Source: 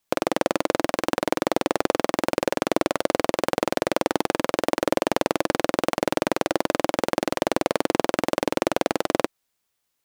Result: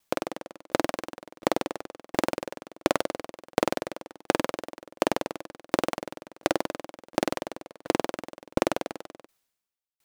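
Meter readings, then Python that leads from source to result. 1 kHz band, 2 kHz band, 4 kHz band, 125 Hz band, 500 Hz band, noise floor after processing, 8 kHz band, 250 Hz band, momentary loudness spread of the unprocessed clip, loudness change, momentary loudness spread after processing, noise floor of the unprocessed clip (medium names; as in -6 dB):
-6.0 dB, -6.0 dB, -6.0 dB, -5.5 dB, -6.5 dB, under -85 dBFS, -6.0 dB, -6.0 dB, 1 LU, -5.5 dB, 13 LU, -77 dBFS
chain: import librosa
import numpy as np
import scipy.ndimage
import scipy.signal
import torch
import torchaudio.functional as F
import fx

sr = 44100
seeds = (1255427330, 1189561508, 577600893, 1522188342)

p1 = fx.over_compress(x, sr, threshold_db=-25.0, ratio=-1.0)
p2 = x + F.gain(torch.from_numpy(p1), -2.0).numpy()
p3 = fx.tremolo_decay(p2, sr, direction='decaying', hz=1.4, depth_db=34)
y = F.gain(torch.from_numpy(p3), -1.0).numpy()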